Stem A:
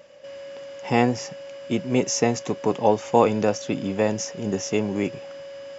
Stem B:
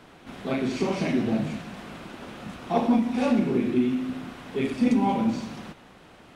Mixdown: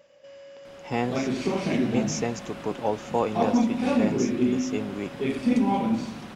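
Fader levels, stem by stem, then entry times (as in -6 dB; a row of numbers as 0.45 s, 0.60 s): -7.5 dB, -0.5 dB; 0.00 s, 0.65 s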